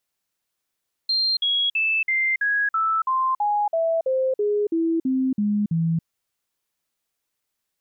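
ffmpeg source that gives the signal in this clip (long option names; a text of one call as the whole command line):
ffmpeg -f lavfi -i "aevalsrc='0.119*clip(min(mod(t,0.33),0.28-mod(t,0.33))/0.005,0,1)*sin(2*PI*4180*pow(2,-floor(t/0.33)/3)*mod(t,0.33))':duration=4.95:sample_rate=44100" out.wav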